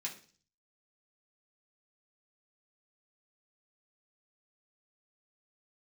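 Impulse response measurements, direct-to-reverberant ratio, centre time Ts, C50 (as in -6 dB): -3.5 dB, 16 ms, 11.0 dB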